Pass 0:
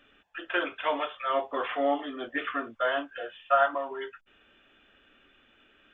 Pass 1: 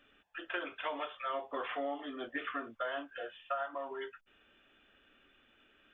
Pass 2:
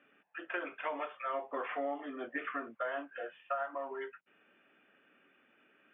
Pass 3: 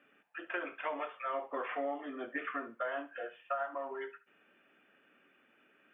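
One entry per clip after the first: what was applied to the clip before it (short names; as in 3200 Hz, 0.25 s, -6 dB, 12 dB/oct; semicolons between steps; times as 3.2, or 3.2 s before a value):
compressor 10:1, threshold -28 dBFS, peak gain reduction 11 dB; gain -5 dB
Chebyshev band-pass 150–2400 Hz, order 3; gain +1 dB
thinning echo 70 ms, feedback 22%, high-pass 420 Hz, level -15.5 dB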